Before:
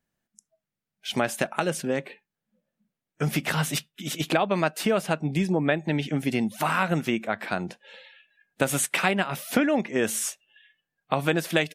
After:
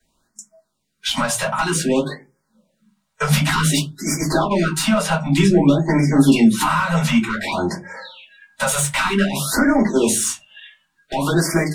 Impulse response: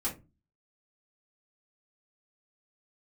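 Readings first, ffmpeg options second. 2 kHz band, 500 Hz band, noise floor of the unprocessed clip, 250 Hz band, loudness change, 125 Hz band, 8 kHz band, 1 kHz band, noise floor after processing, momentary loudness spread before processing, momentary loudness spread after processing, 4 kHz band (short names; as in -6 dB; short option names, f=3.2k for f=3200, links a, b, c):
+5.5 dB, +5.0 dB, under -85 dBFS, +10.5 dB, +8.0 dB, +10.0 dB, +10.0 dB, +7.0 dB, -71 dBFS, 8 LU, 11 LU, +8.5 dB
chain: -filter_complex "[0:a]equalizer=f=1.1k:t=o:w=1.1:g=8.5,acrossover=split=110|4200[a][b][c];[a]crystalizer=i=1.5:c=0[d];[d][b][c]amix=inputs=3:normalize=0,equalizer=f=1k:t=o:w=1:g=3,equalizer=f=4k:t=o:w=1:g=10,equalizer=f=8k:t=o:w=1:g=9,acontrast=87,alimiter=limit=-6dB:level=0:latency=1:release=38,asoftclip=type=tanh:threshold=-7.5dB,acrossover=split=280[e][f];[f]acompressor=threshold=-19dB:ratio=8[g];[e][g]amix=inputs=2:normalize=0[h];[1:a]atrim=start_sample=2205,asetrate=52920,aresample=44100[i];[h][i]afir=irnorm=-1:irlink=0,afftfilt=real='re*(1-between(b*sr/1024,290*pow(3400/290,0.5+0.5*sin(2*PI*0.54*pts/sr))/1.41,290*pow(3400/290,0.5+0.5*sin(2*PI*0.54*pts/sr))*1.41))':imag='im*(1-between(b*sr/1024,290*pow(3400/290,0.5+0.5*sin(2*PI*0.54*pts/sr))/1.41,290*pow(3400/290,0.5+0.5*sin(2*PI*0.54*pts/sr))*1.41))':win_size=1024:overlap=0.75"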